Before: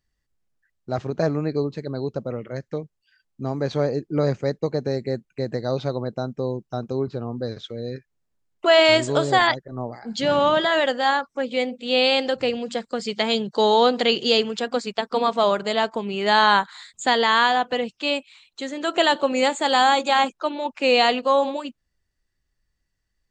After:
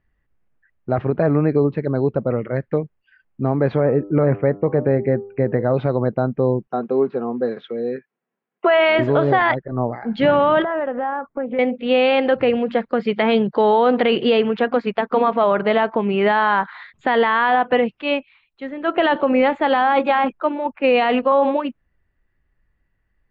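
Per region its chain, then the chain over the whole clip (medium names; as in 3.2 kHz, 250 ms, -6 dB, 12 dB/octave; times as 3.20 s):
3.80–5.74 s: low-pass 2.8 kHz 24 dB/octave + de-hum 99.78 Hz, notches 14
6.67–8.99 s: high-pass 210 Hz 24 dB/octave + modulation noise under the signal 35 dB + comb of notches 300 Hz
10.62–11.59 s: low-pass 1.3 kHz + compression 5:1, threshold -29 dBFS + loudspeaker Doppler distortion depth 0.14 ms
18.01–21.32 s: bass shelf 110 Hz +9 dB + three bands expanded up and down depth 70%
whole clip: low-pass 2.4 kHz 24 dB/octave; loudness maximiser +14.5 dB; trim -6 dB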